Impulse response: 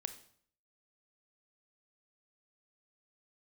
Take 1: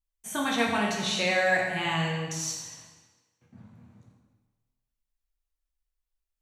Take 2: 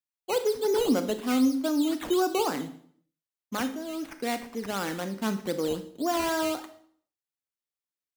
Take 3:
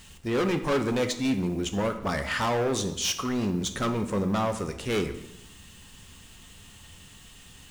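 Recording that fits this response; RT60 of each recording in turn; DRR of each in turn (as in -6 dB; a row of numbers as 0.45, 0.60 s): 2; 1.3, 0.60, 0.85 s; -2.5, 9.5, 7.0 dB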